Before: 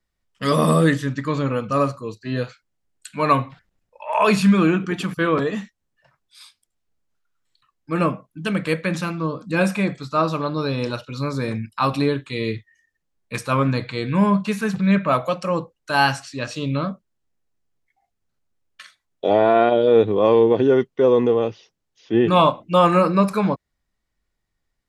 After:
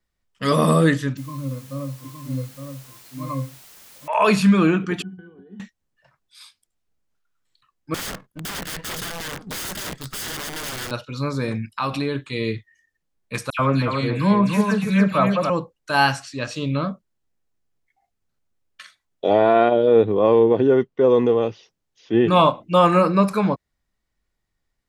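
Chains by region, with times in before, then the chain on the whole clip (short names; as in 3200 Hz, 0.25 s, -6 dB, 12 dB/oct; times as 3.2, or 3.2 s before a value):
1.17–4.08 octave resonator C, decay 0.18 s + requantised 8-bit, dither triangular + echo 0.864 s -6 dB
5.02–5.6 bell 280 Hz +14.5 dB 0.56 oct + compressor 4:1, threshold -26 dBFS + octave resonator F#, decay 0.18 s
7.94–10.91 minimum comb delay 0.62 ms + wrapped overs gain 25.5 dB
11.62–12.15 bell 2700 Hz +3.5 dB 1.9 oct + compressor 2:1, threshold -23 dBFS
13.5–15.5 dispersion lows, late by 92 ms, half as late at 2500 Hz + echo 0.285 s -5 dB
19.68–21.1 median filter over 3 samples + high shelf 2800 Hz -8 dB
whole clip: dry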